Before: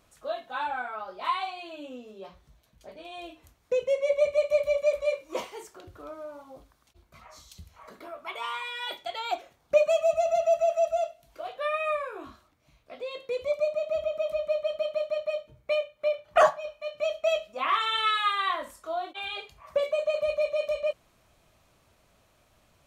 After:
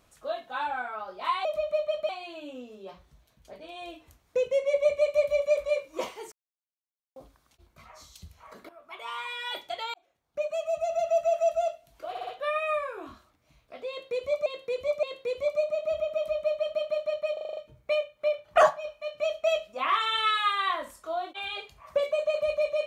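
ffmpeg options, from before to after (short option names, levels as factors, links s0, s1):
-filter_complex "[0:a]asplit=18[s0][s1][s2][s3][s4][s5][s6][s7][s8][s9][s10][s11][s12][s13][s14][s15][s16][s17];[s0]atrim=end=1.452[s18];[s1]atrim=start=14.208:end=14.852[s19];[s2]atrim=start=1.448:end=5.68,asetpts=PTS-STARTPTS,afade=t=out:st=4.228:d=0.004:c=hsin[s20];[s3]atrim=start=5.68:end=6.52,asetpts=PTS-STARTPTS,volume=0[s21];[s4]atrim=start=6.52:end=8.05,asetpts=PTS-STARTPTS,afade=t=in:d=0.004:c=hsin,afade=t=out:st=1.526:d=0.004:c=hsin:silence=0.177828[s22];[s5]atrim=start=8.05:end=9.3,asetpts=PTS-STARTPTS,afade=t=in:d=0.65:silence=0.177828,afade=t=out:st=1.246:d=0.004:c=hsin[s23];[s6]atrim=start=9.3:end=11.512,asetpts=PTS-STARTPTS,afade=t=in:d=1.47[s24];[s7]atrim=start=11.448:end=11.512[s25];[s8]atrim=start=11.448:end=11.512[s26];[s9]atrim=start=11.448:end=13.642[s27];[s10]atrim=start=13.068:end=13.642[s28];[s11]atrim=start=13.068:end=15.412[s29];[s12]atrim=start=15.368:end=15.412[s30];[s13]atrim=start=15.368:end=15.412[s31];[s14]atrim=start=15.368:end=15.412[s32];[s15]atrim=start=15.368:end=15.412[s33];[s16]atrim=start=15.368:end=15.412[s34];[s17]atrim=start=15.368[s35];[s18][s19]acrossfade=d=0.004:c1=hsin:c2=hsin[s36];[s20][s21][s22][s23][s24]concat=n=5:v=0:a=1[s37];[s36][s37]acrossfade=d=0.004:c1=hsin:c2=hsin[s38];[s38][s25]acrossfade=d=0.004:c1=hsin:c2=hsin[s39];[s39][s26]acrossfade=d=0.004:c1=hsin:c2=hsin[s40];[s40][s27]acrossfade=d=0.004:c1=hsin:c2=hsin[s41];[s41][s28]acrossfade=d=0.004:c1=hsin:c2=hsin[s42];[s42][s29]acrossfade=d=0.004:c1=hsin:c2=hsin[s43];[s43][s30]acrossfade=d=0.004:c1=hsin:c2=hsin[s44];[s44][s31]acrossfade=d=0.004:c1=hsin:c2=hsin[s45];[s45][s32]acrossfade=d=0.004:c1=hsin:c2=hsin[s46];[s46][s33]acrossfade=d=0.004:c1=hsin:c2=hsin[s47];[s47][s34]acrossfade=d=0.004:c1=hsin:c2=hsin[s48];[s48][s35]acrossfade=d=0.004:c1=hsin:c2=hsin"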